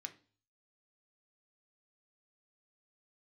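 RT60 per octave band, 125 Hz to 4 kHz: 0.70, 0.50, 0.40, 0.40, 0.35, 0.45 s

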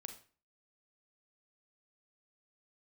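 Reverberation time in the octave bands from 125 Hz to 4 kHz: 0.45, 0.45, 0.40, 0.40, 0.40, 0.35 s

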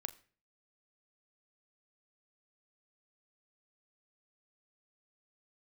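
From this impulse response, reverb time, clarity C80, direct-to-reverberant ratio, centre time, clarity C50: 0.45 s, 21.0 dB, 10.5 dB, 4 ms, 18.5 dB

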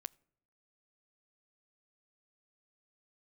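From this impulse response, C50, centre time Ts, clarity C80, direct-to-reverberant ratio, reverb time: 27.0 dB, 1 ms, 29.0 dB, 22.5 dB, 0.70 s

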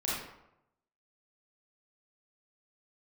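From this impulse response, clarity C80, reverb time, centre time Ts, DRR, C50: 3.0 dB, 0.85 s, 73 ms, -7.5 dB, -2.0 dB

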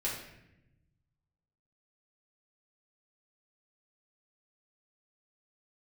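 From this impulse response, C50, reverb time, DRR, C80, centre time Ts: 3.5 dB, 0.85 s, -6.5 dB, 6.5 dB, 46 ms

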